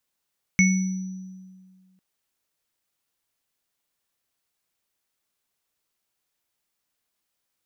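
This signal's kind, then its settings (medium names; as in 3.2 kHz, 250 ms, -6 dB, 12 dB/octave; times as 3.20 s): sine partials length 1.40 s, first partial 187 Hz, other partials 2.21/5.92 kHz, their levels 0/-9 dB, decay 1.88 s, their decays 0.44/1.11 s, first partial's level -15 dB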